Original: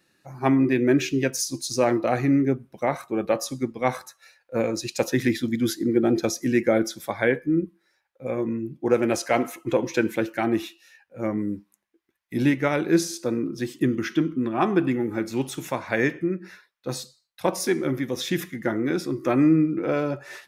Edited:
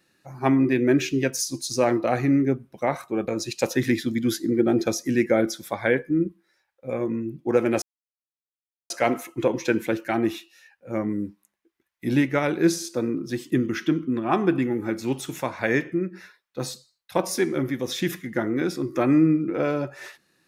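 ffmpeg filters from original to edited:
ffmpeg -i in.wav -filter_complex "[0:a]asplit=3[link_01][link_02][link_03];[link_01]atrim=end=3.282[link_04];[link_02]atrim=start=4.648:end=9.19,asetpts=PTS-STARTPTS,afade=type=out:start_time=4.538:duration=0.004:curve=hsin,apad=pad_dur=1.08[link_05];[link_03]atrim=start=9.19,asetpts=PTS-STARTPTS,afade=type=in:duration=0.004:curve=hsin[link_06];[link_05][link_06]concat=n=2:v=0:a=1[link_07];[link_04][link_07]acrossfade=duration=0.004:curve1=hsin:curve2=hsin" out.wav

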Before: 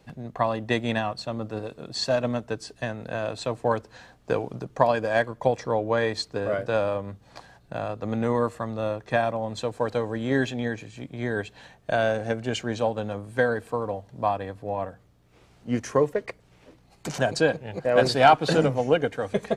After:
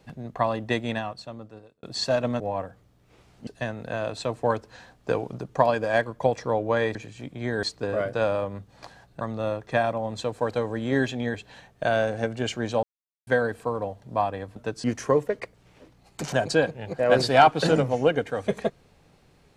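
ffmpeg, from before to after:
ffmpeg -i in.wav -filter_complex "[0:a]asplit=12[link_01][link_02][link_03][link_04][link_05][link_06][link_07][link_08][link_09][link_10][link_11][link_12];[link_01]atrim=end=1.83,asetpts=PTS-STARTPTS,afade=type=out:start_time=0.58:duration=1.25[link_13];[link_02]atrim=start=1.83:end=2.402,asetpts=PTS-STARTPTS,afade=type=in:duration=0.004:curve=hsin[link_14];[link_03]atrim=start=14.628:end=15.702[link_15];[link_04]atrim=start=2.678:end=6.162[link_16];[link_05]atrim=start=10.728:end=11.412[link_17];[link_06]atrim=start=6.158:end=7.742[link_18];[link_07]atrim=start=8.598:end=10.732[link_19];[link_08]atrim=start=11.408:end=12.9,asetpts=PTS-STARTPTS,afade=type=out:start_time=1.488:duration=0.004:curve=hsin[link_20];[link_09]atrim=start=12.9:end=13.34,asetpts=PTS-STARTPTS,volume=0[link_21];[link_10]atrim=start=13.34:end=14.632,asetpts=PTS-STARTPTS,afade=type=in:duration=0.004:curve=hsin[link_22];[link_11]atrim=start=2.398:end=2.682[link_23];[link_12]atrim=start=15.698[link_24];[link_13][link_14]concat=n=2:v=0:a=1[link_25];[link_25][link_15]acrossfade=duration=0.004:curve1=hsin:curve2=hsin[link_26];[link_26][link_16]acrossfade=duration=0.004:curve1=hsin:curve2=hsin[link_27];[link_27][link_17]acrossfade=duration=0.004:curve1=hsin:curve2=hsin[link_28];[link_28][link_18]acrossfade=duration=0.004:curve1=hsin:curve2=hsin[link_29];[link_29][link_19]acrossfade=duration=0.004:curve1=hsin:curve2=hsin[link_30];[link_20][link_21][link_22]concat=n=3:v=0:a=1[link_31];[link_30][link_31]acrossfade=duration=0.004:curve1=hsin:curve2=hsin[link_32];[link_32][link_23]acrossfade=duration=0.004:curve1=hsin:curve2=hsin[link_33];[link_33][link_24]acrossfade=duration=0.004:curve1=hsin:curve2=hsin" out.wav

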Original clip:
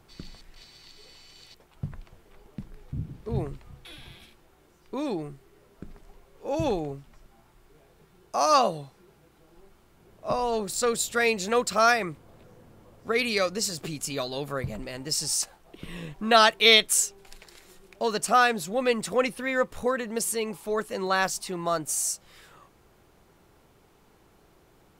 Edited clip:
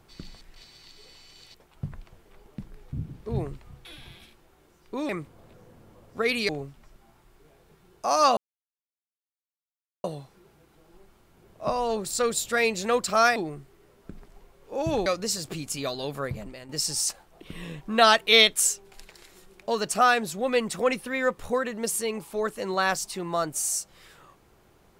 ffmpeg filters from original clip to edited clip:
ffmpeg -i in.wav -filter_complex "[0:a]asplit=7[link_01][link_02][link_03][link_04][link_05][link_06][link_07];[link_01]atrim=end=5.092[link_08];[link_02]atrim=start=11.988:end=13.392[link_09];[link_03]atrim=start=6.788:end=8.67,asetpts=PTS-STARTPTS,afade=type=out:start_time=1.878:duration=0.004:curve=hsin,apad=pad_dur=1.67[link_10];[link_04]atrim=start=8.67:end=11.992,asetpts=PTS-STARTPTS,afade=type=in:duration=0.004:curve=hsin[link_11];[link_05]atrim=start=5.088:end=6.792[link_12];[link_06]atrim=start=13.388:end=15.02,asetpts=PTS-STARTPTS,afade=type=out:start_time=1.182:duration=0.45:silence=0.334965[link_13];[link_07]atrim=start=15.02,asetpts=PTS-STARTPTS,afade=type=in:duration=0.004:curve=hsin:silence=0.334965[link_14];[link_08][link_09]acrossfade=duration=0.004:curve1=hsin:curve2=hsin[link_15];[link_10][link_11]concat=n=2:v=0:a=1[link_16];[link_15][link_16]acrossfade=duration=0.004:curve1=hsin:curve2=hsin[link_17];[link_17][link_12]acrossfade=duration=0.004:curve1=hsin:curve2=hsin[link_18];[link_13][link_14]concat=n=2:v=0:a=1[link_19];[link_18][link_19]acrossfade=duration=0.004:curve1=hsin:curve2=hsin" out.wav

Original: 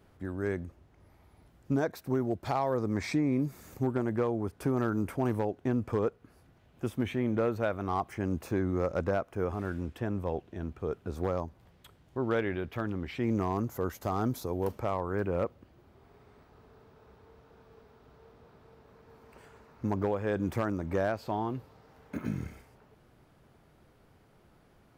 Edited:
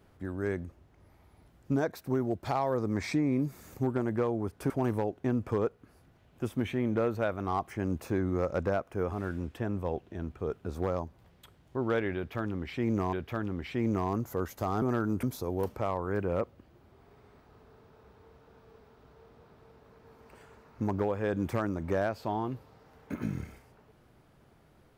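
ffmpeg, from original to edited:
ffmpeg -i in.wav -filter_complex "[0:a]asplit=5[link_01][link_02][link_03][link_04][link_05];[link_01]atrim=end=4.702[link_06];[link_02]atrim=start=5.108:end=13.542[link_07];[link_03]atrim=start=12.568:end=14.262[link_08];[link_04]atrim=start=4.698:end=5.112[link_09];[link_05]atrim=start=14.258[link_10];[link_06][link_07]acrossfade=duration=0.004:curve1=hsin:curve2=hsin[link_11];[link_11][link_08]acrossfade=duration=0.004:curve1=hsin:curve2=hsin[link_12];[link_12][link_09]acrossfade=duration=0.004:curve1=hsin:curve2=hsin[link_13];[link_13][link_10]acrossfade=duration=0.004:curve1=hsin:curve2=hsin" out.wav

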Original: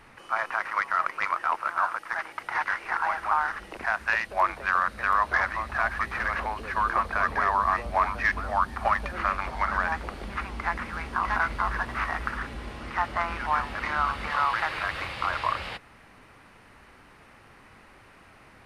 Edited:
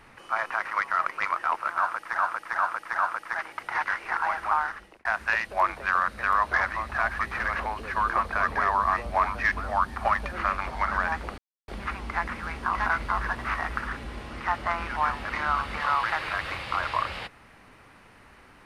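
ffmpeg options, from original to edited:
ffmpeg -i in.wav -filter_complex "[0:a]asplit=6[link_01][link_02][link_03][link_04][link_05][link_06];[link_01]atrim=end=2.182[link_07];[link_02]atrim=start=1.778:end=2.182[link_08];[link_03]atrim=start=1.778:end=2.182[link_09];[link_04]atrim=start=1.778:end=3.85,asetpts=PTS-STARTPTS,afade=type=out:start_time=1.582:duration=0.49[link_10];[link_05]atrim=start=3.85:end=10.18,asetpts=PTS-STARTPTS,afade=type=in:duration=0.004:curve=hsin,afade=type=out:start_time=6.326:duration=0.004:curve=hsin,apad=pad_dur=0.3[link_11];[link_06]atrim=start=10.18,asetpts=PTS-STARTPTS,afade=type=in:duration=0.004:curve=hsin[link_12];[link_07][link_08]acrossfade=duration=0.004:curve1=hsin:curve2=hsin[link_13];[link_13][link_09]acrossfade=duration=0.004:curve1=hsin:curve2=hsin[link_14];[link_10][link_11][link_12]concat=n=3:v=0:a=1[link_15];[link_14][link_15]acrossfade=duration=0.004:curve1=hsin:curve2=hsin" out.wav

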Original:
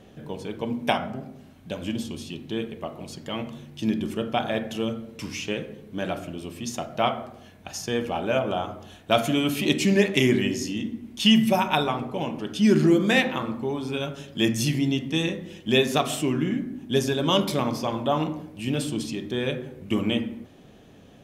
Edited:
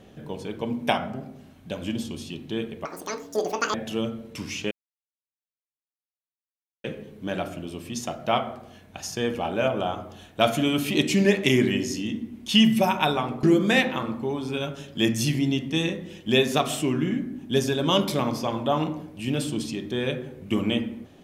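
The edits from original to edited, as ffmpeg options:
ffmpeg -i in.wav -filter_complex "[0:a]asplit=5[link_01][link_02][link_03][link_04][link_05];[link_01]atrim=end=2.854[link_06];[link_02]atrim=start=2.85:end=4.58,asetpts=PTS-STARTPTS,asetrate=85554,aresample=44100,atrim=end_sample=39326,asetpts=PTS-STARTPTS[link_07];[link_03]atrim=start=4.576:end=5.55,asetpts=PTS-STARTPTS,afade=type=out:start_time=0.97:duration=0.004:curve=hsin,apad=pad_dur=2.13[link_08];[link_04]atrim=start=5.55:end=12.142,asetpts=PTS-STARTPTS,afade=type=in:duration=0.004:curve=hsin[link_09];[link_05]atrim=start=12.828[link_10];[link_06][link_07]acrossfade=duration=0.004:curve1=hsin:curve2=hsin[link_11];[link_08][link_09]concat=n=2:v=0:a=1[link_12];[link_11][link_12]acrossfade=duration=0.004:curve1=hsin:curve2=hsin[link_13];[link_13][link_10]acrossfade=duration=0.004:curve1=hsin:curve2=hsin" out.wav

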